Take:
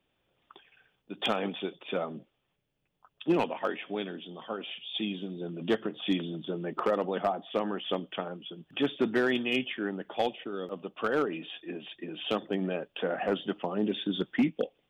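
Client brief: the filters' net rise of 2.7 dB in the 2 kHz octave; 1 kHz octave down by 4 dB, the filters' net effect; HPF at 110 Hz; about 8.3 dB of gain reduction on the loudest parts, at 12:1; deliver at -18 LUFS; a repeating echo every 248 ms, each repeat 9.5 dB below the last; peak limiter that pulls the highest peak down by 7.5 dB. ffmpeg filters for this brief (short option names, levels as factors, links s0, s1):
-af "highpass=110,equalizer=f=1000:t=o:g=-8,equalizer=f=2000:t=o:g=6,acompressor=threshold=0.0316:ratio=12,alimiter=level_in=1.41:limit=0.0631:level=0:latency=1,volume=0.708,aecho=1:1:248|496|744|992:0.335|0.111|0.0365|0.012,volume=10"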